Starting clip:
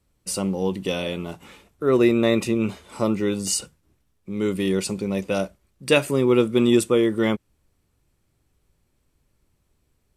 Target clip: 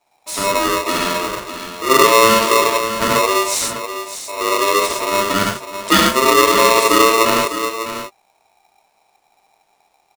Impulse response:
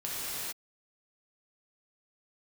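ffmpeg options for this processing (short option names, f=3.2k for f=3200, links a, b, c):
-filter_complex "[0:a]lowpass=9.1k,aecho=1:1:603:0.316[a];[1:a]atrim=start_sample=2205,atrim=end_sample=6174[b];[a][b]afir=irnorm=-1:irlink=0,alimiter=level_in=6dB:limit=-1dB:release=50:level=0:latency=1,aeval=exprs='val(0)*sgn(sin(2*PI*790*n/s))':c=same,volume=-1dB"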